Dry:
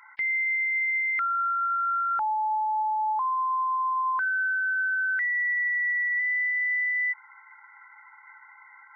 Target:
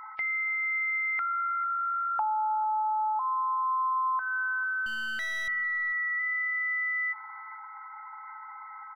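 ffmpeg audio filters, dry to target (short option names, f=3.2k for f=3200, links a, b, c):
-filter_complex "[0:a]firequalizer=gain_entry='entry(500,0);entry(730,14);entry(1400,0)':delay=0.05:min_phase=1,acompressor=threshold=-26dB:ratio=6,aeval=exprs='val(0)+0.01*sin(2*PI*1300*n/s)':c=same,asettb=1/sr,asplit=3[a][b][c];[a]atrim=end=4.864[d];[b]atrim=start=4.86:end=5.48,asetpts=PTS-STARTPTS,afade=t=in:d=0.004:c=qsin,afade=t=out:st=0.616:d=0.004:c=qsin,aeval=exprs='clip(val(0),-1,0.02)':c=same[e];[c]atrim=start=5.476[f];[d][e]acrossfade=d=0.004:c1=hsin:c2=qsin[g];[g][f]acrossfade=d=0.004:c1=qsin:c2=hsin,asplit=2[h][i];[i]adelay=444,lowpass=f=1.2k:p=1,volume=-15dB,asplit=2[j][k];[k]adelay=444,lowpass=f=1.2k:p=1,volume=0.25,asplit=2[l][m];[m]adelay=444,lowpass=f=1.2k:p=1,volume=0.25[n];[h][j][l][n]amix=inputs=4:normalize=0,volume=-2dB"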